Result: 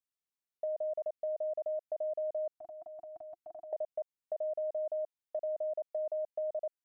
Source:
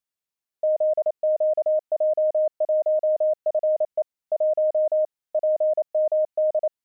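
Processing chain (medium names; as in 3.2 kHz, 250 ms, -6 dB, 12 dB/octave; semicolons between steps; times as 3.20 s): 2.54–3.73 s: elliptic band-stop 340–710 Hz, stop band 40 dB; compression 2.5:1, threshold -28 dBFS, peak gain reduction 6 dB; trim -8 dB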